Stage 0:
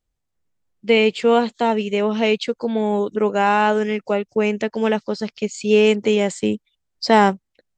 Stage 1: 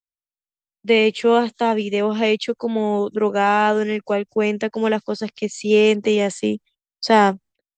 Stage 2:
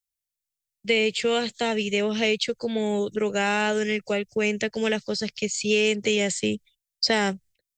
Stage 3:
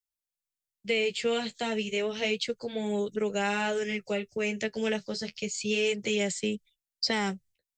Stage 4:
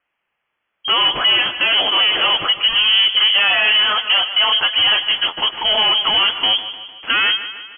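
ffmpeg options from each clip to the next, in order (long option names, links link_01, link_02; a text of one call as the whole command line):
ffmpeg -i in.wav -filter_complex "[0:a]agate=range=-33dB:threshold=-39dB:ratio=3:detection=peak,acrossover=split=150|560|3500[link_01][link_02][link_03][link_04];[link_01]alimiter=level_in=13.5dB:limit=-24dB:level=0:latency=1,volume=-13.5dB[link_05];[link_05][link_02][link_03][link_04]amix=inputs=4:normalize=0" out.wav
ffmpeg -i in.wav -filter_complex "[0:a]equalizer=frequency=250:width_type=o:width=1:gain=-10,equalizer=frequency=1000:width_type=o:width=1:gain=-12,equalizer=frequency=2000:width_type=o:width=1:gain=4,acrossover=split=1200|7000[link_01][link_02][link_03];[link_01]acompressor=threshold=-22dB:ratio=4[link_04];[link_02]acompressor=threshold=-25dB:ratio=4[link_05];[link_03]acompressor=threshold=-51dB:ratio=4[link_06];[link_04][link_05][link_06]amix=inputs=3:normalize=0,bass=frequency=250:gain=7,treble=frequency=4000:gain=9" out.wav
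ffmpeg -i in.wav -af "flanger=delay=4.5:depth=9.4:regen=-33:speed=0.31:shape=sinusoidal,volume=-2dB" out.wav
ffmpeg -i in.wav -filter_complex "[0:a]asplit=2[link_01][link_02];[link_02]highpass=frequency=720:poles=1,volume=30dB,asoftclip=type=tanh:threshold=-15.5dB[link_03];[link_01][link_03]amix=inputs=2:normalize=0,lowpass=frequency=1600:poles=1,volume=-6dB,asplit=2[link_04][link_05];[link_05]aecho=0:1:152|304|456|608|760:0.237|0.126|0.0666|0.0353|0.0187[link_06];[link_04][link_06]amix=inputs=2:normalize=0,lowpass=frequency=2900:width_type=q:width=0.5098,lowpass=frequency=2900:width_type=q:width=0.6013,lowpass=frequency=2900:width_type=q:width=0.9,lowpass=frequency=2900:width_type=q:width=2.563,afreqshift=-3400,volume=8.5dB" out.wav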